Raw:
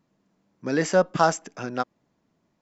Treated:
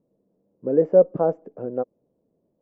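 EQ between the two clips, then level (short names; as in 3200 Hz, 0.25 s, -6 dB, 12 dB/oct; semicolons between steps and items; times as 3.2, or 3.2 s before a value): synth low-pass 500 Hz, resonance Q 4; -3.0 dB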